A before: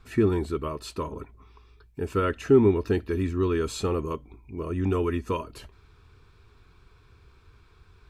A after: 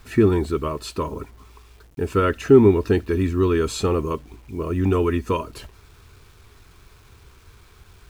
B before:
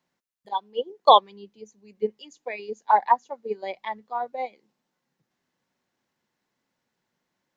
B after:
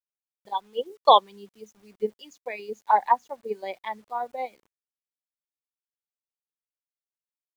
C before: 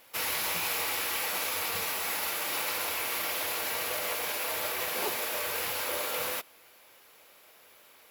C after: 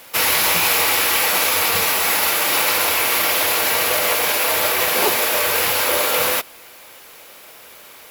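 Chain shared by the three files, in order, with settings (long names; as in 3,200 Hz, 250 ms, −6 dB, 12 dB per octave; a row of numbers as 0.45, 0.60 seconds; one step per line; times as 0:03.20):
bit reduction 10 bits
normalise the peak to −3 dBFS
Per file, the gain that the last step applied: +5.5, −1.5, +14.5 decibels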